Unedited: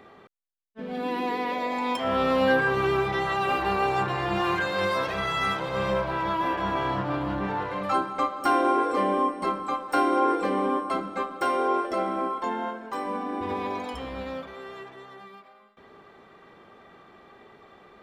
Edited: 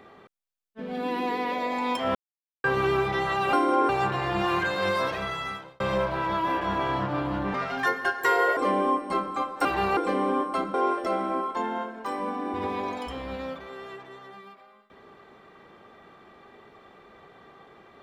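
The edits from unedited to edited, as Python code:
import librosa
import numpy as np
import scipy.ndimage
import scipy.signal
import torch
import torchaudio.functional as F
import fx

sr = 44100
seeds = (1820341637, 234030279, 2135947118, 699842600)

y = fx.edit(x, sr, fx.silence(start_s=2.15, length_s=0.49),
    fx.swap(start_s=3.53, length_s=0.32, other_s=9.97, other_length_s=0.36),
    fx.fade_out_span(start_s=5.01, length_s=0.75),
    fx.speed_span(start_s=7.5, length_s=1.39, speed=1.35),
    fx.cut(start_s=11.1, length_s=0.51), tone=tone)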